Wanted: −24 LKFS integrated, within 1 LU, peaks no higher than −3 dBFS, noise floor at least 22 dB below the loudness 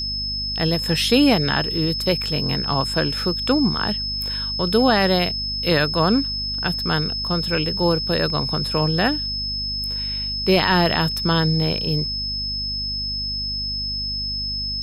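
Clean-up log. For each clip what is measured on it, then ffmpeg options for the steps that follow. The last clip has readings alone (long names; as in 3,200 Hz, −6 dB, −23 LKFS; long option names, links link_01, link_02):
mains hum 50 Hz; hum harmonics up to 250 Hz; level of the hum −30 dBFS; interfering tone 5,200 Hz; level of the tone −24 dBFS; integrated loudness −20.5 LKFS; sample peak −4.5 dBFS; target loudness −24.0 LKFS
→ -af "bandreject=frequency=50:width_type=h:width=6,bandreject=frequency=100:width_type=h:width=6,bandreject=frequency=150:width_type=h:width=6,bandreject=frequency=200:width_type=h:width=6,bandreject=frequency=250:width_type=h:width=6"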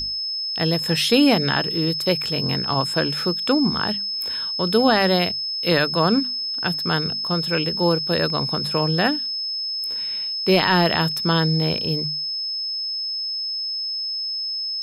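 mains hum none found; interfering tone 5,200 Hz; level of the tone −24 dBFS
→ -af "bandreject=frequency=5200:width=30"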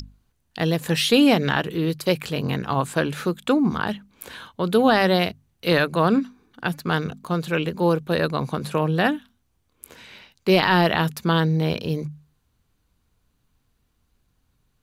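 interfering tone none found; integrated loudness −22.0 LKFS; sample peak −5.0 dBFS; target loudness −24.0 LKFS
→ -af "volume=-2dB"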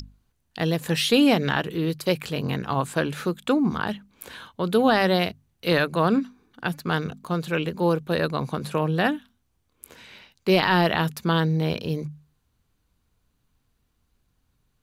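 integrated loudness −24.0 LKFS; sample peak −7.0 dBFS; background noise floor −72 dBFS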